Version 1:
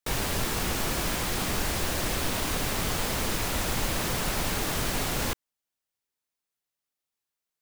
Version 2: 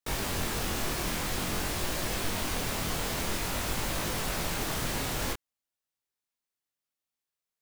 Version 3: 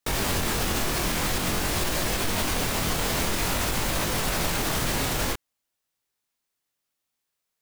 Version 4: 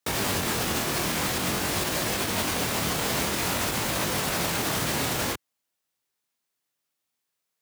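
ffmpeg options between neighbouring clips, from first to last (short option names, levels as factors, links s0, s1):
-af "flanger=delay=19:depth=7.3:speed=0.51"
-af "alimiter=limit=0.0631:level=0:latency=1:release=52,volume=2.51"
-af "highpass=94"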